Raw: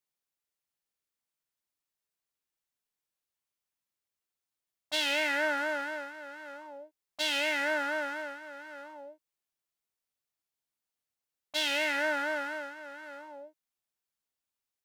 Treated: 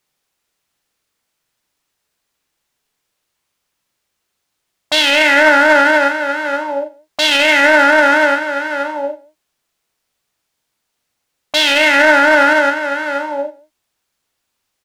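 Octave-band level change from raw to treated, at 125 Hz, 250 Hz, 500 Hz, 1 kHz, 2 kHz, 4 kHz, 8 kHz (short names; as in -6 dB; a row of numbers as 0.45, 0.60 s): n/a, +22.0 dB, +21.0 dB, +22.5 dB, +21.0 dB, +18.0 dB, +16.5 dB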